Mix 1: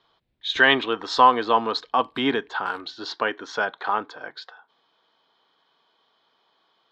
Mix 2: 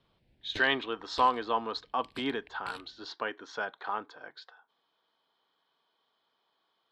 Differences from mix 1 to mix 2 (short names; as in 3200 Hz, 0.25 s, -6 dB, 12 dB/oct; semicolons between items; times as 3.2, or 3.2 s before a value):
speech -10.0 dB; background +7.0 dB